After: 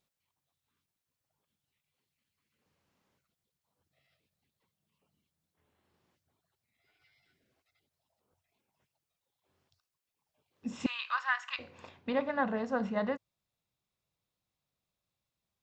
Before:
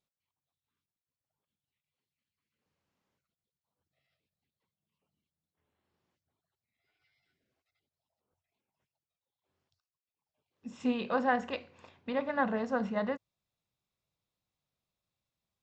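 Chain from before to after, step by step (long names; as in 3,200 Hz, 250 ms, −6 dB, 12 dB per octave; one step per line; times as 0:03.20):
0:10.86–0:11.59: Chebyshev high-pass filter 1,100 Hz, order 4
speech leveller within 4 dB 0.5 s
level +2 dB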